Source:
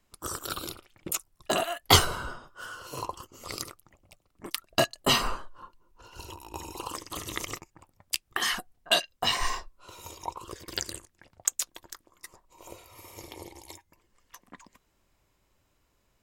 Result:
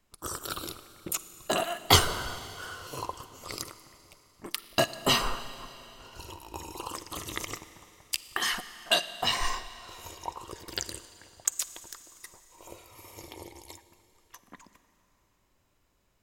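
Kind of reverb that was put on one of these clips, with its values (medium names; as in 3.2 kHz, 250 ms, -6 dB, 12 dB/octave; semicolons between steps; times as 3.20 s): Schroeder reverb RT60 3.3 s, DRR 13 dB; trim -1 dB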